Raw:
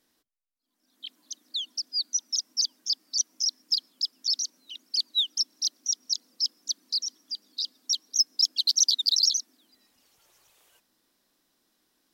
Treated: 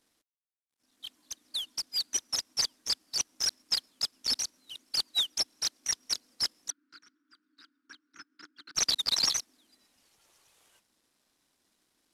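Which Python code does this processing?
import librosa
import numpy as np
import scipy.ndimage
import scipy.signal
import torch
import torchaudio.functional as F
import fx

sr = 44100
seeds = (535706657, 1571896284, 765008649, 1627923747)

y = fx.cvsd(x, sr, bps=64000)
y = fx.double_bandpass(y, sr, hz=650.0, octaves=2.3, at=(6.7, 8.75))
y = y * 10.0 ** (-3.0 / 20.0)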